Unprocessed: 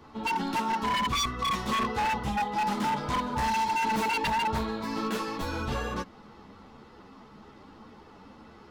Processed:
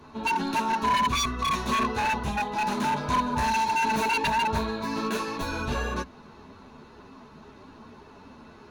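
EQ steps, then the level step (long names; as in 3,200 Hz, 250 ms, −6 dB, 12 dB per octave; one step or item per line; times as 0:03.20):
EQ curve with evenly spaced ripples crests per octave 1.5, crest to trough 7 dB
+2.0 dB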